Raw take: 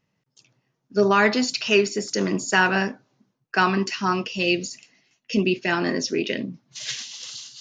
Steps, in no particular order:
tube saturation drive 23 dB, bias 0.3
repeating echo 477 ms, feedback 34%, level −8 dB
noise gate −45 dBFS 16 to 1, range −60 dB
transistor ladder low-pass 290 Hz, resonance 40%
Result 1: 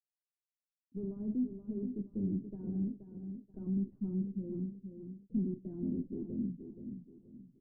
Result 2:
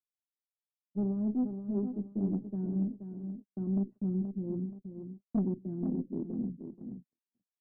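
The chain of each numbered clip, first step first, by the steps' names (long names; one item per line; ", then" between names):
tube saturation, then repeating echo, then noise gate, then transistor ladder low-pass
transistor ladder low-pass, then tube saturation, then repeating echo, then noise gate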